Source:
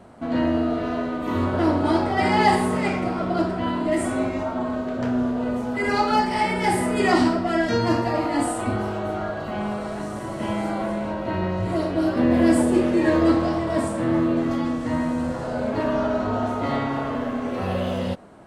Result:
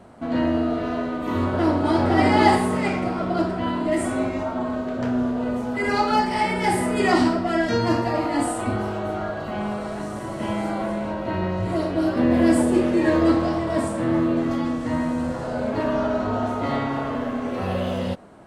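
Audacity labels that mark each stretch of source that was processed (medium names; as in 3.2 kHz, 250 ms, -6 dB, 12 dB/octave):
1.470000	2.060000	echo throw 510 ms, feedback 10%, level -1.5 dB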